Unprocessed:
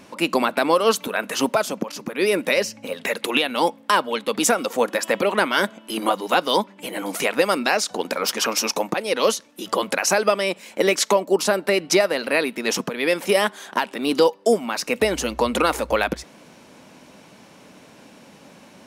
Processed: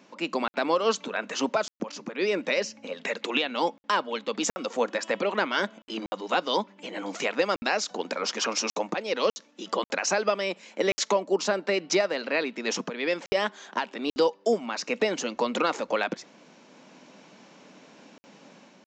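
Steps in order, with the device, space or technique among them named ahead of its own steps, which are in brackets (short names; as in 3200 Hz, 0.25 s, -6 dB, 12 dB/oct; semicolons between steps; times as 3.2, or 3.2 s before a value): call with lost packets (HPF 160 Hz 24 dB/oct; downsampling 16000 Hz; AGC gain up to 5 dB; packet loss packets of 60 ms); gain -9 dB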